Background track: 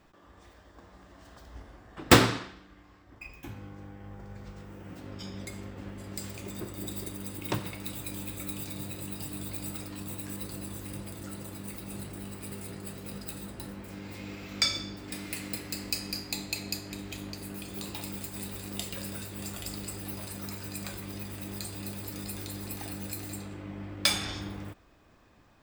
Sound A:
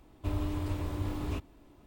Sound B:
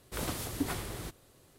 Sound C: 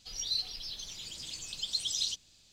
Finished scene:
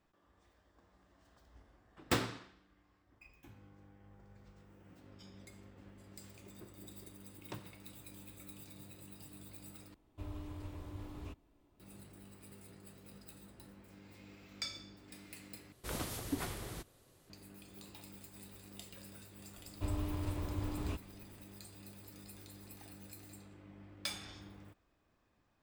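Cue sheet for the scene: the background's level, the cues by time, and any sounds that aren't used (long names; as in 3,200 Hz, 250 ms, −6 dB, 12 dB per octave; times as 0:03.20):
background track −15 dB
0:09.94: overwrite with A −12.5 dB
0:15.72: overwrite with B −4.5 dB
0:19.57: mix in A −4.5 dB
not used: C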